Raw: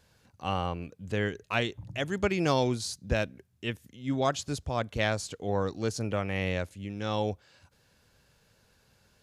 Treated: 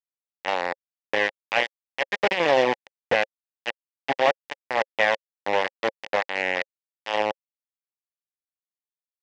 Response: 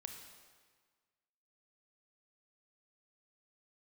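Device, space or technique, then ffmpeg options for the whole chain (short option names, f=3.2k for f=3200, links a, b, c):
hand-held game console: -af "acrusher=bits=3:mix=0:aa=0.000001,bass=f=250:g=9,treble=f=4k:g=-4,highpass=430,equalizer=f=540:t=q:w=4:g=9,equalizer=f=820:t=q:w=4:g=7,equalizer=f=1.3k:t=q:w=4:g=-6,equalizer=f=1.9k:t=q:w=4:g=9,equalizer=f=2.8k:t=q:w=4:g=4,equalizer=f=4.2k:t=q:w=4:g=-4,lowpass=f=5.1k:w=0.5412,lowpass=f=5.1k:w=1.3066,volume=2.5dB"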